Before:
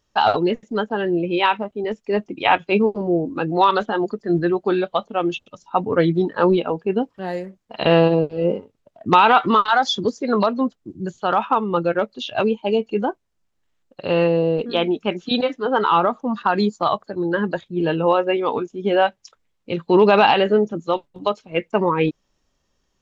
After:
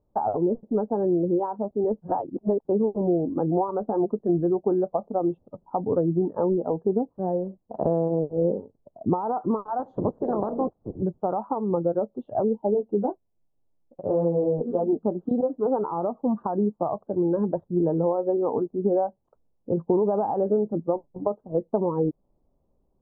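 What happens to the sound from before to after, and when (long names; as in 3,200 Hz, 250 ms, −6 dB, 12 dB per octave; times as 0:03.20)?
0:02.02–0:02.65: reverse
0:09.78–0:11.02: ceiling on every frequency bin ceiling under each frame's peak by 24 dB
0:12.74–0:14.93: flanger 1.3 Hz, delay 6 ms, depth 7 ms, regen −7%
whole clip: downward compressor 6 to 1, threshold −21 dBFS; inverse Chebyshev low-pass filter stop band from 2,100 Hz, stop band 50 dB; level +2 dB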